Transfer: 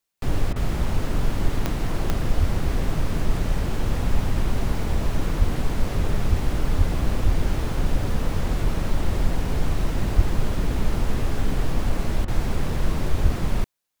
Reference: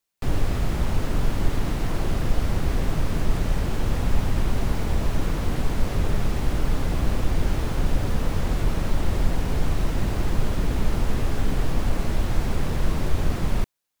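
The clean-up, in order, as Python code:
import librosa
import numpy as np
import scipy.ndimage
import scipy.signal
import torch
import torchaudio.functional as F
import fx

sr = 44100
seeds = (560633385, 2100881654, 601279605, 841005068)

y = fx.fix_declick_ar(x, sr, threshold=10.0)
y = fx.fix_deplosive(y, sr, at_s=(2.39, 5.38, 6.29, 6.77, 7.25, 10.15, 13.22))
y = fx.fix_interpolate(y, sr, at_s=(0.53, 12.25), length_ms=28.0)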